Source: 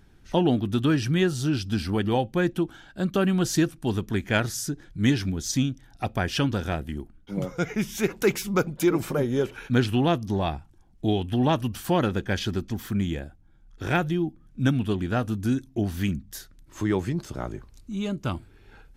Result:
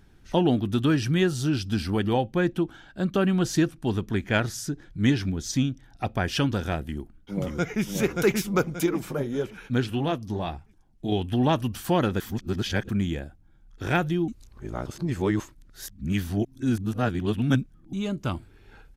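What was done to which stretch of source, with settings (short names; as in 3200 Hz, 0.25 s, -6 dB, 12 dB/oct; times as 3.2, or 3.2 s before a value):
2.13–6.24 high shelf 6500 Hz -7 dB
6.82–7.83 echo throw 0.58 s, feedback 40%, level -2.5 dB
8.86–11.12 flange 1.7 Hz, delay 0.9 ms, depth 8 ms, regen -52%
12.2–12.89 reverse
14.28–17.93 reverse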